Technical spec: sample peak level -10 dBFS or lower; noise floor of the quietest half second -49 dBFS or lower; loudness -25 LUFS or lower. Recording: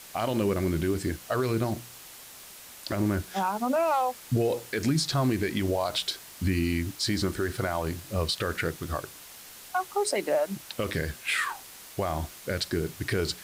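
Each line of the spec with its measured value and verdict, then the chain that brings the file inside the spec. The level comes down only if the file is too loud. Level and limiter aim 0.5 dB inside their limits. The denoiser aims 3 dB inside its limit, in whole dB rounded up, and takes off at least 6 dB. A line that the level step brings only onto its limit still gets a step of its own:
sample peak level -16.5 dBFS: pass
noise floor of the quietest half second -47 dBFS: fail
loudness -29.0 LUFS: pass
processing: noise reduction 6 dB, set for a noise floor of -47 dBFS

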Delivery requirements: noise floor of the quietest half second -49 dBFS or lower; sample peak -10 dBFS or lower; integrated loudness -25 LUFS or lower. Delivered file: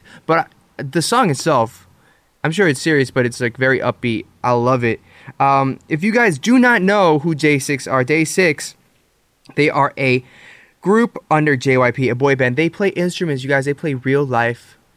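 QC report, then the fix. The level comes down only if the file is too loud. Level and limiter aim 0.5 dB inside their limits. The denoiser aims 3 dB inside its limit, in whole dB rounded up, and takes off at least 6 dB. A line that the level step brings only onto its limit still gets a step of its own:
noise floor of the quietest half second -60 dBFS: pass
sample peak -3.5 dBFS: fail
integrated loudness -16.5 LUFS: fail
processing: trim -9 dB

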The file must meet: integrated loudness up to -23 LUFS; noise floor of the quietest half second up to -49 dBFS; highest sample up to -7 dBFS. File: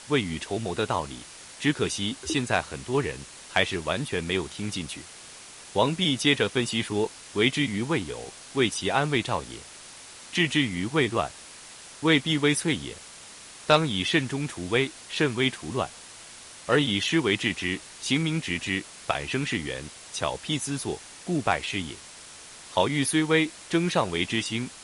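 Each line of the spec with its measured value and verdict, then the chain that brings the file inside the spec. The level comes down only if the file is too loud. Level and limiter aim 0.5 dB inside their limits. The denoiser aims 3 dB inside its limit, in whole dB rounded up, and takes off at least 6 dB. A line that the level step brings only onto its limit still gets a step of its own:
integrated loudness -26.5 LUFS: pass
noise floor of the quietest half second -46 dBFS: fail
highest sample -6.5 dBFS: fail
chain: noise reduction 6 dB, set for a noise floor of -46 dBFS; peak limiter -7.5 dBFS

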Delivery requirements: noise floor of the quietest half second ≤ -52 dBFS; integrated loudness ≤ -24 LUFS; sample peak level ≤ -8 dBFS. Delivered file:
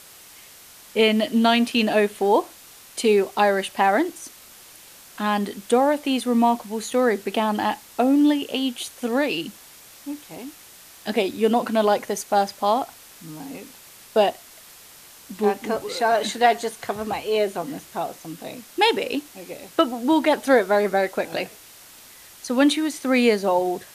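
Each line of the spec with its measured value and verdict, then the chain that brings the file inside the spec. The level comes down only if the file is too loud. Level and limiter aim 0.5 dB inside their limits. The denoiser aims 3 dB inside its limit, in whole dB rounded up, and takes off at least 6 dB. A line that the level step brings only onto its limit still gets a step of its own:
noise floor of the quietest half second -47 dBFS: fail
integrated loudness -22.0 LUFS: fail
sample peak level -5.5 dBFS: fail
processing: noise reduction 6 dB, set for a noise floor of -47 dBFS; trim -2.5 dB; peak limiter -8.5 dBFS

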